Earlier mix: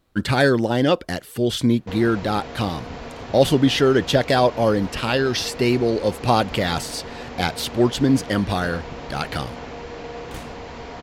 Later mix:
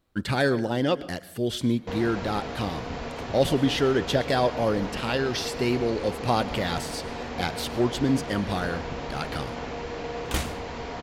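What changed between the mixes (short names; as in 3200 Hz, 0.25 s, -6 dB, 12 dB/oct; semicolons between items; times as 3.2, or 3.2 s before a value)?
speech -8.0 dB; second sound +9.0 dB; reverb: on, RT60 0.45 s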